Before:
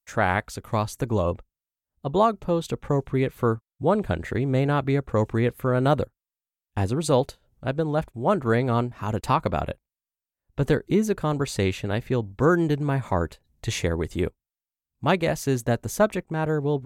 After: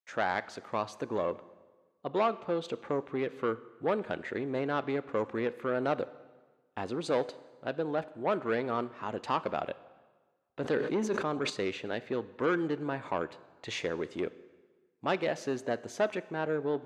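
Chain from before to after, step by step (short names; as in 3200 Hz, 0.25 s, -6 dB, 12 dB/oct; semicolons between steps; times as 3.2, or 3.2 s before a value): soft clip -17.5 dBFS, distortion -13 dB; BPF 290–4200 Hz; plate-style reverb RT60 1.4 s, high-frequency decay 0.85×, DRR 15.5 dB; 10.62–11.5 sustainer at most 51 dB/s; gain -3.5 dB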